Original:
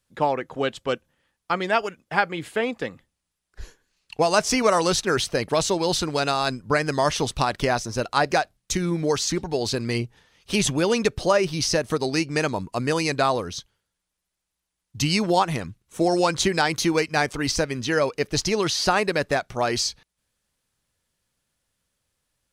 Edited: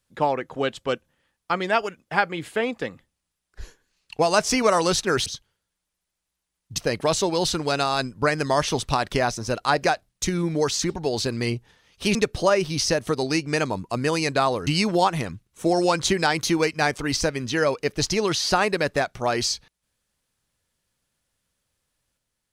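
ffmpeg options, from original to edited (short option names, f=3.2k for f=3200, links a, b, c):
-filter_complex "[0:a]asplit=5[a][b][c][d][e];[a]atrim=end=5.262[f];[b]atrim=start=13.498:end=15.022[g];[c]atrim=start=5.258:end=10.632[h];[d]atrim=start=10.978:end=13.502[i];[e]atrim=start=15.018[j];[f][g]acrossfade=d=0.004:c1=hsin:c2=hsin[k];[k][h]acrossfade=d=0.004:c1=hsin:c2=hsin[l];[l][i]acrossfade=d=0.004:c1=hsin:c2=hsin[m];[m][j]acrossfade=d=0.004:c1=hsin:c2=hsin"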